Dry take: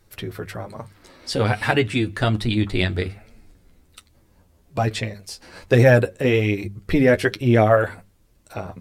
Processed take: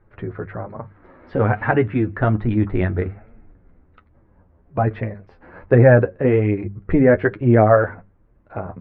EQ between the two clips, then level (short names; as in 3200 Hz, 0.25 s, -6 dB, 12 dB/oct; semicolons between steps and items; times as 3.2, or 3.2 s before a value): LPF 1700 Hz 24 dB/oct; +2.5 dB